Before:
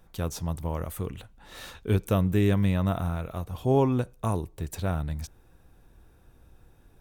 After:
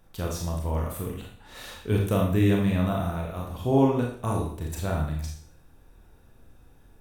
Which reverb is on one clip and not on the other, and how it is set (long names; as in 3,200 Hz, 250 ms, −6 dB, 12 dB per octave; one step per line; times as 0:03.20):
four-comb reverb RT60 0.54 s, combs from 26 ms, DRR −1 dB
level −1.5 dB